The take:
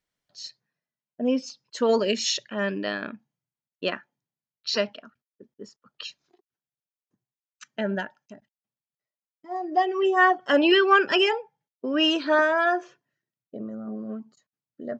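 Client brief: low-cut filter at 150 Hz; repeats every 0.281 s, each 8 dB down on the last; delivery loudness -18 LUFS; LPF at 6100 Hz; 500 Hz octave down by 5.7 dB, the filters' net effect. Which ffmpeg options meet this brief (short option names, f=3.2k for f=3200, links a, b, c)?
-af "highpass=150,lowpass=6.1k,equalizer=f=500:t=o:g=-8,aecho=1:1:281|562|843|1124|1405:0.398|0.159|0.0637|0.0255|0.0102,volume=8dB"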